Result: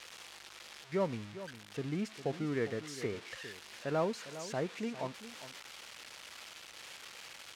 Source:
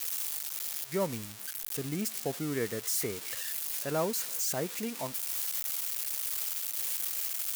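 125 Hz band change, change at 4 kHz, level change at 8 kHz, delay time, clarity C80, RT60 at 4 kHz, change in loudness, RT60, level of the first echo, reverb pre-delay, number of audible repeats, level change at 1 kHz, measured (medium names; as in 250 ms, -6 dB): -1.0 dB, -6.5 dB, -17.0 dB, 405 ms, no reverb, no reverb, -8.0 dB, no reverb, -13.5 dB, no reverb, 1, -1.5 dB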